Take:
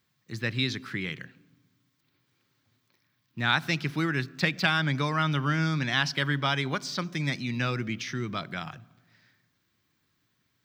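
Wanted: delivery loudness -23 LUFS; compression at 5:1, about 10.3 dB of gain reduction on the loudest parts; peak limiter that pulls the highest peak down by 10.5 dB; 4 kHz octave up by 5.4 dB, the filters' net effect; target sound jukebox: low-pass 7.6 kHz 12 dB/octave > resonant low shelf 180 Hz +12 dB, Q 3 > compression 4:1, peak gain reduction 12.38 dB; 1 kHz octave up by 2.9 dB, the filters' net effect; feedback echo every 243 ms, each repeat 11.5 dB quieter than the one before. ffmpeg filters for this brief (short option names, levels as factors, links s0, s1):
-af "equalizer=f=1000:t=o:g=4,equalizer=f=4000:t=o:g=6.5,acompressor=threshold=0.0398:ratio=5,alimiter=level_in=1.06:limit=0.0631:level=0:latency=1,volume=0.944,lowpass=7600,lowshelf=f=180:t=q:w=3:g=12,aecho=1:1:243|486|729:0.266|0.0718|0.0194,acompressor=threshold=0.0355:ratio=4,volume=2.99"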